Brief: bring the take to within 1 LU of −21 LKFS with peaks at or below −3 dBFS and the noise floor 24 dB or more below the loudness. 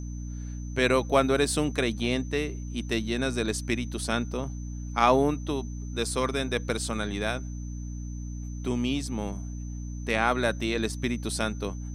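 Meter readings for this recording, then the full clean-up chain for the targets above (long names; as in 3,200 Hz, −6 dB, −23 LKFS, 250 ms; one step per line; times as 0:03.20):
mains hum 60 Hz; hum harmonics up to 300 Hz; level of the hum −33 dBFS; interfering tone 6,100 Hz; level of the tone −51 dBFS; integrated loudness −28.5 LKFS; sample peak −6.5 dBFS; target loudness −21.0 LKFS
→ hum removal 60 Hz, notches 5
notch filter 6,100 Hz, Q 30
level +7.5 dB
brickwall limiter −3 dBFS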